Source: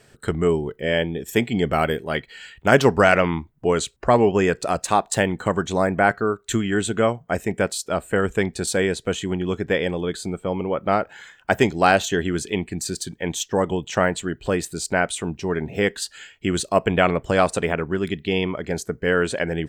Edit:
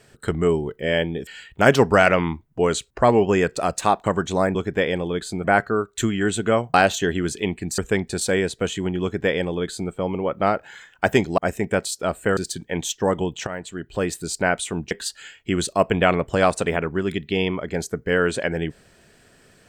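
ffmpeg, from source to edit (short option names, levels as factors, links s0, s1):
-filter_complex "[0:a]asplit=11[s0][s1][s2][s3][s4][s5][s6][s7][s8][s9][s10];[s0]atrim=end=1.272[s11];[s1]atrim=start=2.328:end=5.102[s12];[s2]atrim=start=5.438:end=5.952[s13];[s3]atrim=start=9.478:end=10.372[s14];[s4]atrim=start=5.948:end=7.252[s15];[s5]atrim=start=11.838:end=12.882[s16];[s6]atrim=start=8.238:end=11.842[s17];[s7]atrim=start=7.248:end=8.242[s18];[s8]atrim=start=12.878:end=13.98,asetpts=PTS-STARTPTS,afade=t=out:st=1.098:d=0.004:c=hsin:silence=0.177828[s19];[s9]atrim=start=13.98:end=15.422,asetpts=PTS-STARTPTS,afade=t=in:d=0.69:silence=0.177828[s20];[s10]atrim=start=15.868[s21];[s11][s12]acrossfade=d=0.004:c1=hsin:c2=hsin[s22];[s22][s13]acrossfade=d=0.004:c1=hsin:c2=hsin[s23];[s23][s14]acrossfade=d=0.004:c1=hsin:c2=hsin[s24];[s24][s15]acrossfade=d=0.004:c1=hsin:c2=hsin[s25];[s25][s16]acrossfade=d=0.004:c1=hsin:c2=hsin[s26];[s26][s17]acrossfade=d=0.004:c1=hsin:c2=hsin[s27];[s27][s18]acrossfade=d=0.004:c1=hsin:c2=hsin[s28];[s19][s20]concat=n=2:v=0:a=1[s29];[s28][s29]acrossfade=d=0.004:c1=hsin:c2=hsin[s30];[s30][s21]acrossfade=d=0.004:c1=hsin:c2=hsin"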